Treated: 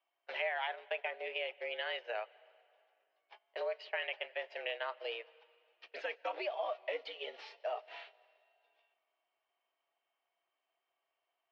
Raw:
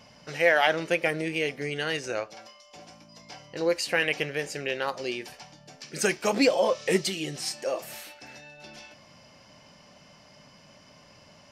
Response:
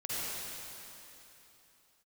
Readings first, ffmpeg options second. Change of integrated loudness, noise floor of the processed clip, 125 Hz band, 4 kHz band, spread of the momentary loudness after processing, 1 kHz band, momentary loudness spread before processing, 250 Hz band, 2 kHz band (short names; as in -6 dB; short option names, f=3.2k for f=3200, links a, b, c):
-13.0 dB, under -85 dBFS, under -40 dB, -11.5 dB, 9 LU, -10.0 dB, 22 LU, -31.0 dB, -12.5 dB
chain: -filter_complex "[0:a]crystalizer=i=1:c=0,acompressor=threshold=-35dB:ratio=5,agate=range=-30dB:threshold=-39dB:ratio=16:detection=peak,highpass=f=350:t=q:w=0.5412,highpass=f=350:t=q:w=1.307,lowpass=f=3.4k:t=q:w=0.5176,lowpass=f=3.4k:t=q:w=0.7071,lowpass=f=3.4k:t=q:w=1.932,afreqshift=100,asplit=2[a][b];[1:a]atrim=start_sample=2205,asetrate=61740,aresample=44100,adelay=96[c];[b][c]afir=irnorm=-1:irlink=0,volume=-25dB[d];[a][d]amix=inputs=2:normalize=0"